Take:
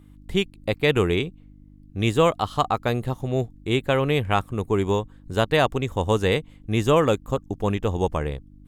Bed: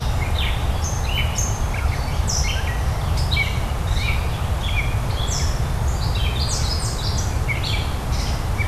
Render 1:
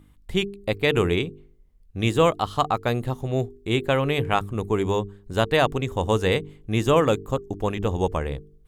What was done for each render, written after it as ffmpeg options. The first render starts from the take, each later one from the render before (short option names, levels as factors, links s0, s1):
-af "bandreject=f=50:t=h:w=4,bandreject=f=100:t=h:w=4,bandreject=f=150:t=h:w=4,bandreject=f=200:t=h:w=4,bandreject=f=250:t=h:w=4,bandreject=f=300:t=h:w=4,bandreject=f=350:t=h:w=4,bandreject=f=400:t=h:w=4,bandreject=f=450:t=h:w=4"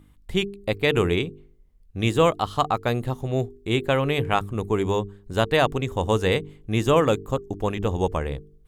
-af anull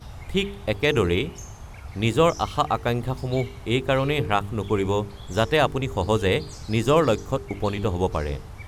-filter_complex "[1:a]volume=0.126[s0];[0:a][s0]amix=inputs=2:normalize=0"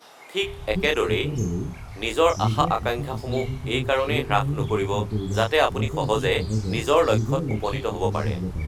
-filter_complex "[0:a]asplit=2[s0][s1];[s1]adelay=28,volume=0.562[s2];[s0][s2]amix=inputs=2:normalize=0,acrossover=split=300[s3][s4];[s3]adelay=410[s5];[s5][s4]amix=inputs=2:normalize=0"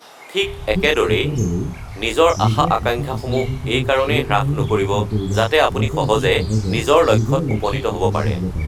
-af "volume=2,alimiter=limit=0.794:level=0:latency=1"